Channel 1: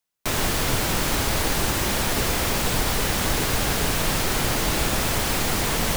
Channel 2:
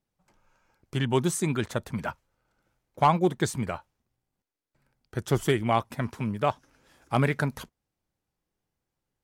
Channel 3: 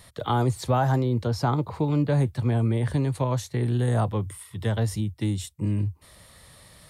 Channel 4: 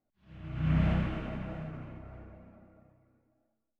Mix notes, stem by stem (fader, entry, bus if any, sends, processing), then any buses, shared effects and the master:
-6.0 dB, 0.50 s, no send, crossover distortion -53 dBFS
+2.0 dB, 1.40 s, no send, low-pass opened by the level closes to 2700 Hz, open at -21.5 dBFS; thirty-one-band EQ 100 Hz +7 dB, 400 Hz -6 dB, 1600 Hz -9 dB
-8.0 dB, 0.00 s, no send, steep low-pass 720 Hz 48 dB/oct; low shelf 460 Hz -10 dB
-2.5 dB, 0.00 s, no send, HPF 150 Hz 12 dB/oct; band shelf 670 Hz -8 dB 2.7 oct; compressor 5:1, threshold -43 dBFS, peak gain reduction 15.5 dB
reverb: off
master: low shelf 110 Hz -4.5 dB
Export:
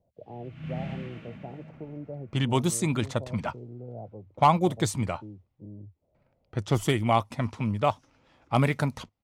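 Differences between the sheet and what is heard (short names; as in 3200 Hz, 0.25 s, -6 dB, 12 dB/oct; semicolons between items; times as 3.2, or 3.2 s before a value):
stem 1: muted; stem 4: missing compressor 5:1, threshold -43 dBFS, peak gain reduction 15.5 dB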